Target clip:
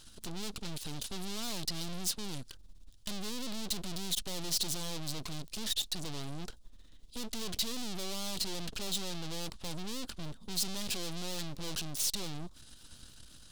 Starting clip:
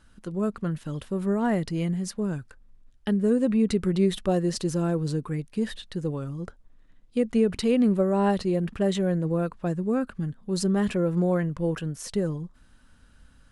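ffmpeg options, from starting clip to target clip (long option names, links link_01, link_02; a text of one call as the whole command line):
ffmpeg -i in.wav -af "aeval=exprs='(tanh(126*val(0)+0.7)-tanh(0.7))/126':channel_layout=same,aeval=exprs='abs(val(0))':channel_layout=same,highshelf=frequency=2700:width_type=q:width=1.5:gain=11.5,volume=5dB" out.wav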